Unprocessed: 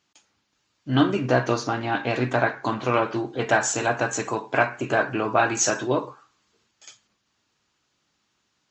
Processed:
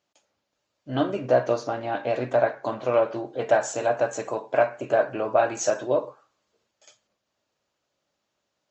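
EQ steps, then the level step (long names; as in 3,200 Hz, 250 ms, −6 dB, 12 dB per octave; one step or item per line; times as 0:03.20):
parametric band 580 Hz +14.5 dB 0.7 octaves
−8.5 dB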